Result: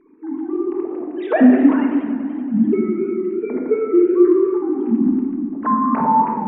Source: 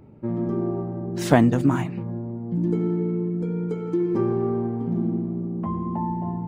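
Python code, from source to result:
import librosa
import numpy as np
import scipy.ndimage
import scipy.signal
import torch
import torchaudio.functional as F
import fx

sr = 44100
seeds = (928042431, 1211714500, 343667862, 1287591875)

y = fx.sine_speech(x, sr)
y = fx.room_shoebox(y, sr, seeds[0], volume_m3=1200.0, walls='mixed', distance_m=1.5)
y = fx.echo_warbled(y, sr, ms=95, feedback_pct=79, rate_hz=2.8, cents=158, wet_db=-14.0)
y = y * librosa.db_to_amplitude(3.5)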